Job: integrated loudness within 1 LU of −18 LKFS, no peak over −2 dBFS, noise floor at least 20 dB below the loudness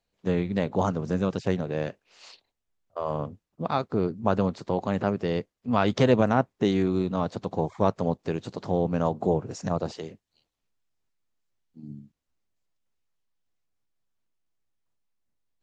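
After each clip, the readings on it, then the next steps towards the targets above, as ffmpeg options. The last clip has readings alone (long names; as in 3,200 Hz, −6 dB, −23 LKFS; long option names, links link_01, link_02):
integrated loudness −27.0 LKFS; sample peak −7.0 dBFS; target loudness −18.0 LKFS
→ -af "volume=9dB,alimiter=limit=-2dB:level=0:latency=1"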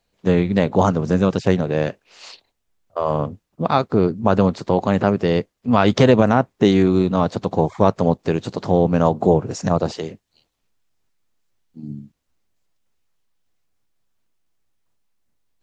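integrated loudness −18.5 LKFS; sample peak −2.0 dBFS; background noise floor −74 dBFS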